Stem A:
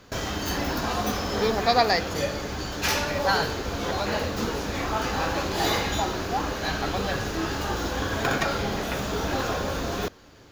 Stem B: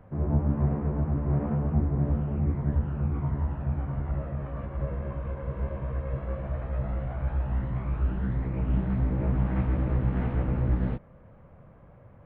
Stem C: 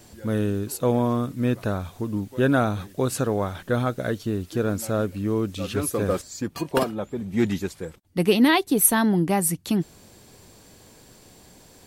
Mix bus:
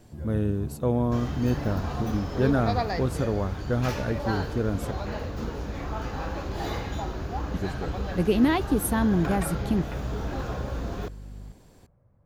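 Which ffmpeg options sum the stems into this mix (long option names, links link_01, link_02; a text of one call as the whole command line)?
ffmpeg -i stem1.wav -i stem2.wav -i stem3.wav -filter_complex "[0:a]aeval=exprs='val(0)+0.0141*(sin(2*PI*50*n/s)+sin(2*PI*2*50*n/s)/2+sin(2*PI*3*50*n/s)/3+sin(2*PI*4*50*n/s)/4+sin(2*PI*5*50*n/s)/5)':channel_layout=same,adelay=1000,volume=-7dB[link_01];[1:a]volume=-14.5dB[link_02];[2:a]volume=-4.5dB,asplit=3[link_03][link_04][link_05];[link_03]atrim=end=4.91,asetpts=PTS-STARTPTS,afade=type=out:start_time=4.906:duration=0.004:curve=hsin[link_06];[link_04]atrim=start=4.91:end=7.54,asetpts=PTS-STARTPTS,volume=0[link_07];[link_05]atrim=start=7.54,asetpts=PTS-STARTPTS,afade=type=in:duration=0.004:curve=hsin[link_08];[link_06][link_07][link_08]concat=n=3:v=0:a=1[link_09];[link_01][link_02][link_09]amix=inputs=3:normalize=0,lowshelf=frequency=160:gain=6.5,highshelf=frequency=2200:gain=-8.5" out.wav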